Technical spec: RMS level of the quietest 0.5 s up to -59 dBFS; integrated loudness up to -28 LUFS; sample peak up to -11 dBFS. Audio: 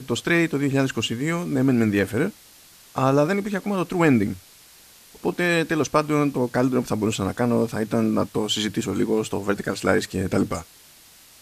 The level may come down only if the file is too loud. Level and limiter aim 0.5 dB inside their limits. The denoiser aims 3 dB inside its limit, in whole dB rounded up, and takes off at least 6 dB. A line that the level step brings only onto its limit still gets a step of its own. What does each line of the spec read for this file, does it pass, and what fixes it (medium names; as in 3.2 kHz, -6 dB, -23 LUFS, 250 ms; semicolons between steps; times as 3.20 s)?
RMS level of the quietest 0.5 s -50 dBFS: fail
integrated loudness -23.0 LUFS: fail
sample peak -5.0 dBFS: fail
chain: noise reduction 7 dB, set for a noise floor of -50 dBFS; trim -5.5 dB; peak limiter -11.5 dBFS